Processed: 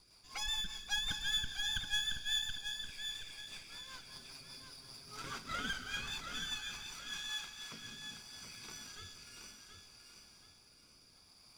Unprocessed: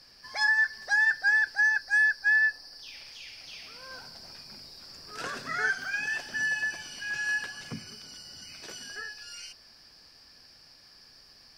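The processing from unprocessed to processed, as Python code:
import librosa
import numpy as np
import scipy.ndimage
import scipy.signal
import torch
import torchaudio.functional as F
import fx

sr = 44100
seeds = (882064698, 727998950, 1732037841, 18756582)

y = fx.lower_of_two(x, sr, delay_ms=0.83)
y = fx.rev_gated(y, sr, seeds[0], gate_ms=440, shape='flat', drr_db=9.5)
y = fx.rotary_switch(y, sr, hz=5.0, then_hz=0.65, switch_at_s=7.13)
y = fx.comb(y, sr, ms=7.4, depth=0.65, at=(4.12, 5.37))
y = fx.highpass(y, sr, hz=550.0, slope=6, at=(6.6, 7.82))
y = fx.echo_feedback(y, sr, ms=726, feedback_pct=36, wet_db=-7)
y = y * librosa.db_to_amplitude(-5.0)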